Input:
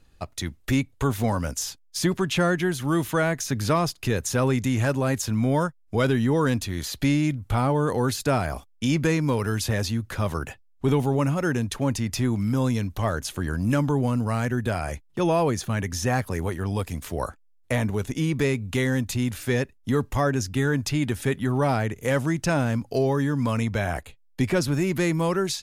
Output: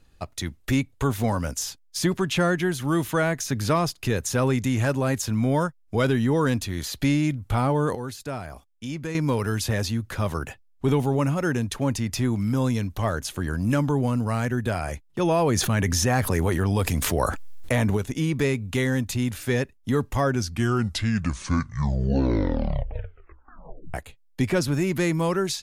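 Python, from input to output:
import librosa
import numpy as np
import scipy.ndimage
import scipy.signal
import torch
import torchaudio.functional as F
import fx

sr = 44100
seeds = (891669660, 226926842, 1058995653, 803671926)

y = fx.env_flatten(x, sr, amount_pct=70, at=(15.31, 17.97))
y = fx.edit(y, sr, fx.clip_gain(start_s=7.95, length_s=1.2, db=-9.5),
    fx.tape_stop(start_s=20.14, length_s=3.8), tone=tone)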